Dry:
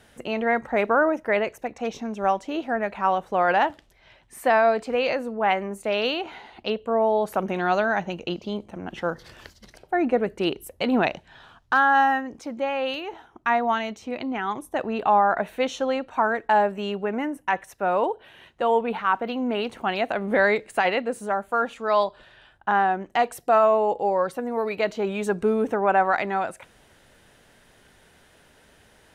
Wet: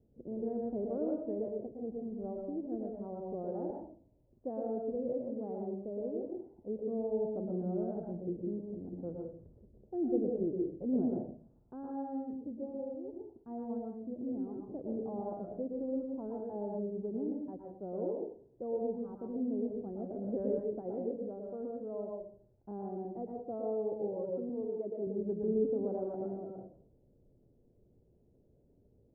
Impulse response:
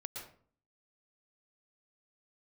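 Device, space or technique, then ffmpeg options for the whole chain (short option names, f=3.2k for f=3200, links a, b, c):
next room: -filter_complex "[0:a]asettb=1/sr,asplit=3[a][b][c];[a]atrim=end=24.494[d];[b]atrim=start=24.49:end=25.07,asetpts=PTS-STARTPTS,afade=t=in:d=0.004:c=qsin,afade=t=out:st=0.576:d=0.004:c=qsin,highpass=230[e];[c]atrim=start=25.066[f];[d][e]acrossfade=d=0.004:c1=hsin:c2=qsin[g];[g][f]acrossfade=d=0.004:c1=qsin:c2=hsin,lowpass=f=440:w=0.5412,lowpass=f=440:w=1.3066[h];[1:a]atrim=start_sample=2205[i];[h][i]afir=irnorm=-1:irlink=0,volume=-4.5dB"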